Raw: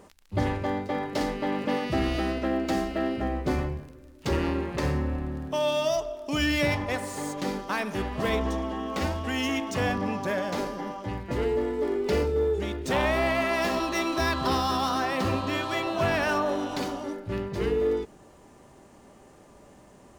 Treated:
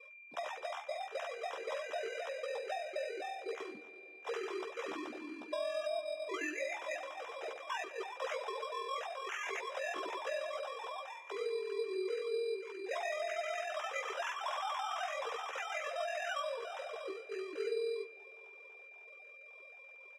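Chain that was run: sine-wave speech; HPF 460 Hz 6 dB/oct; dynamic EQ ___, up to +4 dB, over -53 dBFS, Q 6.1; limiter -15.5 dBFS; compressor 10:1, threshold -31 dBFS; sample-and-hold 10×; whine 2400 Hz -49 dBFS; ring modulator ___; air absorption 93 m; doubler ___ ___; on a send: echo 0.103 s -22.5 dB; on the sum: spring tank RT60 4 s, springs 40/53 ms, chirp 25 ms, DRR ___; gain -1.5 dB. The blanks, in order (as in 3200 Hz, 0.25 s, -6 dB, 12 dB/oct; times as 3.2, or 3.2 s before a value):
1100 Hz, 21 Hz, 13 ms, -4.5 dB, 17.5 dB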